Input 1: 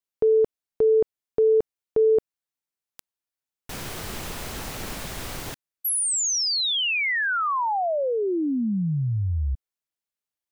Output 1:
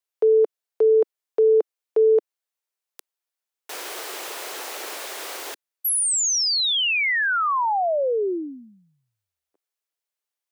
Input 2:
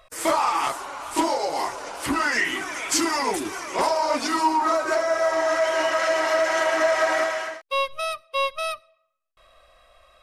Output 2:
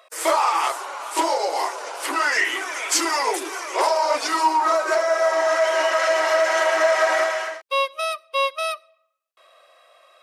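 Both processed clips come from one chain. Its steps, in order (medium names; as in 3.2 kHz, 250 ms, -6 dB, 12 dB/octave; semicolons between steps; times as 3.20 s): steep high-pass 360 Hz 36 dB/octave; trim +2.5 dB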